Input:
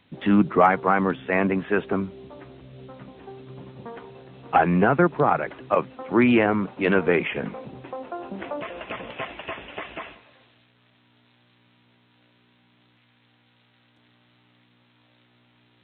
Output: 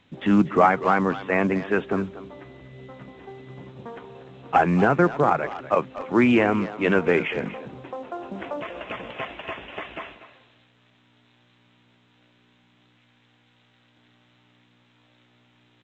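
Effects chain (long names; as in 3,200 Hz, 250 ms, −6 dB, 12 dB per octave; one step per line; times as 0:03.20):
far-end echo of a speakerphone 240 ms, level −13 dB
0:02.30–0:03.67: steady tone 2,000 Hz −55 dBFS
mu-law 128 kbit/s 16,000 Hz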